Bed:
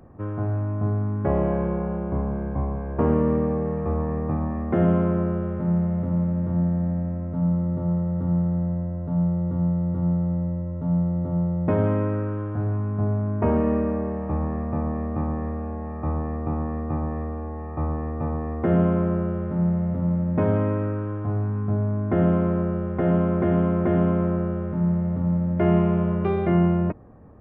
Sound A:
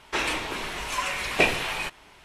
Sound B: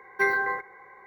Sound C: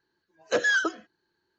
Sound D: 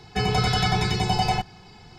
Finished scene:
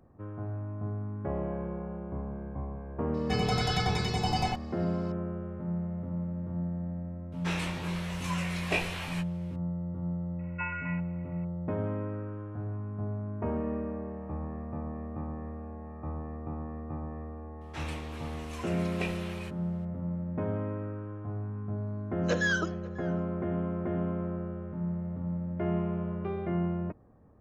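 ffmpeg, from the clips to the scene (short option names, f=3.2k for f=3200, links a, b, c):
-filter_complex "[1:a]asplit=2[a][b];[0:a]volume=-11dB[c];[a]flanger=delay=16.5:depth=4.8:speed=1.1[d];[2:a]lowpass=f=2.6k:t=q:w=0.5098,lowpass=f=2.6k:t=q:w=0.6013,lowpass=f=2.6k:t=q:w=0.9,lowpass=f=2.6k:t=q:w=2.563,afreqshift=-3000[e];[3:a]asplit=2[f][g];[g]adelay=542.3,volume=-20dB,highshelf=f=4k:g=-12.2[h];[f][h]amix=inputs=2:normalize=0[i];[4:a]atrim=end=1.98,asetpts=PTS-STARTPTS,volume=-7dB,afade=t=in:d=0.004:c=hsin,afade=t=out:st=1.976:d=0.004:c=hsin,adelay=3140[j];[d]atrim=end=2.24,asetpts=PTS-STARTPTS,volume=-6dB,afade=t=in:d=0.004:c=hsin,afade=t=out:st=2.236:d=0.004:c=hsin,adelay=7320[k];[e]atrim=end=1.06,asetpts=PTS-STARTPTS,volume=-12dB,afade=t=in:d=0.004:c=hsin,afade=t=out:st=1.056:d=0.004:c=hsin,adelay=10390[l];[b]atrim=end=2.24,asetpts=PTS-STARTPTS,volume=-16dB,afade=t=in:d=0.004:c=hsin,afade=t=out:st=2.236:d=0.004:c=hsin,adelay=17610[m];[i]atrim=end=1.58,asetpts=PTS-STARTPTS,volume=-5.5dB,afade=t=in:d=0.004:c=hsin,afade=t=out:st=1.576:d=0.004:c=hsin,adelay=21770[n];[c][j][k][l][m][n]amix=inputs=6:normalize=0"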